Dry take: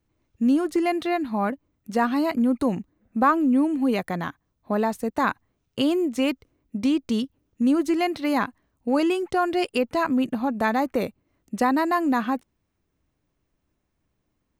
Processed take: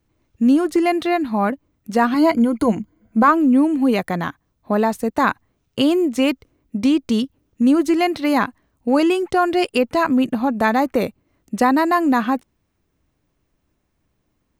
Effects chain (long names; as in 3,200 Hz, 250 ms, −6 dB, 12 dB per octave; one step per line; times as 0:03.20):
0:02.13–0:03.28: EQ curve with evenly spaced ripples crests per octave 1.8, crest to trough 10 dB
level +5.5 dB